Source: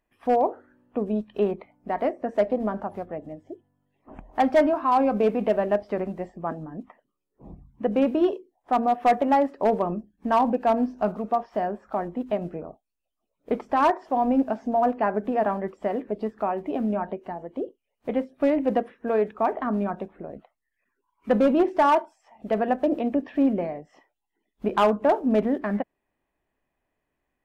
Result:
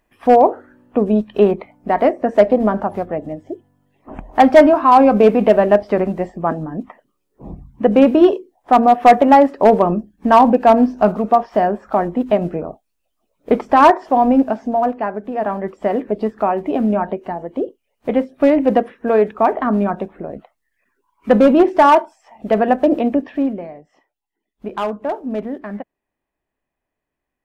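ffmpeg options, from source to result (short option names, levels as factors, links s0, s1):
-af "volume=11.2,afade=t=out:st=13.91:d=1.33:silence=0.251189,afade=t=in:st=15.24:d=0.7:silence=0.316228,afade=t=out:st=23.02:d=0.57:silence=0.281838"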